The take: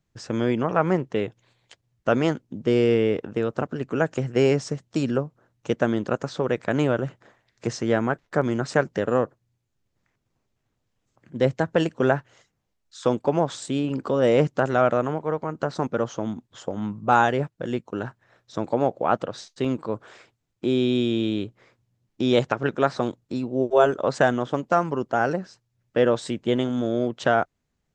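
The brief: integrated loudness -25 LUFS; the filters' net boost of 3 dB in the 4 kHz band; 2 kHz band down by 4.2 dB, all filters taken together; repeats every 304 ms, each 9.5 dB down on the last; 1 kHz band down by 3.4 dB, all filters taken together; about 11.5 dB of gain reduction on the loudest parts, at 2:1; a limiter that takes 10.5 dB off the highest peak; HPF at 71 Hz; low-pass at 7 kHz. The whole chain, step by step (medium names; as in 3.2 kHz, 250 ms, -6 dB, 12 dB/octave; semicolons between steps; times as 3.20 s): high-pass 71 Hz; low-pass 7 kHz; peaking EQ 1 kHz -4 dB; peaking EQ 2 kHz -5.5 dB; peaking EQ 4 kHz +6.5 dB; compression 2:1, threshold -37 dBFS; peak limiter -25.5 dBFS; feedback delay 304 ms, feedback 33%, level -9.5 dB; trim +12.5 dB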